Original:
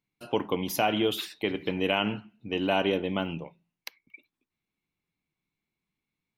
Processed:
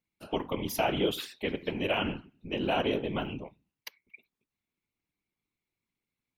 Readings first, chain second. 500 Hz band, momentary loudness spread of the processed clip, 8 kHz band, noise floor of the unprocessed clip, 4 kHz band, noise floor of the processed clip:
-2.5 dB, 20 LU, -3.0 dB, under -85 dBFS, -3.5 dB, under -85 dBFS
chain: whisperiser; gain -3 dB

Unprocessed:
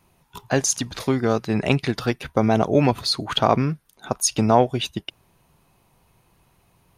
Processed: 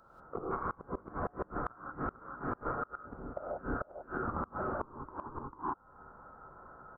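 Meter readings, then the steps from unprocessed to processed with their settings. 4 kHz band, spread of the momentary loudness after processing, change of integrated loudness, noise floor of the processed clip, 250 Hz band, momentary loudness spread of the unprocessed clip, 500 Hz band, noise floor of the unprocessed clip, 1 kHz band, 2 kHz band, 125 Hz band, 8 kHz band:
under -40 dB, 16 LU, -18.5 dB, -61 dBFS, -19.5 dB, 9 LU, -18.0 dB, -62 dBFS, -12.5 dB, -13.5 dB, -21.0 dB, under -40 dB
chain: in parallel at -7 dB: Schmitt trigger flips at -21 dBFS; on the sum: rippled Chebyshev high-pass 2500 Hz, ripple 3 dB; inverted band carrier 3900 Hz; on a send: echo 0.445 s -4.5 dB; on the sum: non-linear reverb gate 0.21 s rising, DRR -7 dB; flipped gate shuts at -23 dBFS, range -28 dB; compressor 4:1, threshold -50 dBFS, peak gain reduction 16.5 dB; gain +14 dB

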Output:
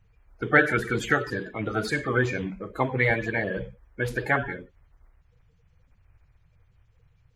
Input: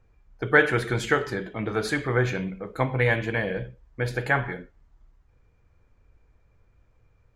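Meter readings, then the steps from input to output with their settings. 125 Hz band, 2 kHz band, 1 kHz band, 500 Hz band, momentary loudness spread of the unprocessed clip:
-2.5 dB, 0.0 dB, +0.5 dB, -1.5 dB, 14 LU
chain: bin magnitudes rounded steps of 30 dB

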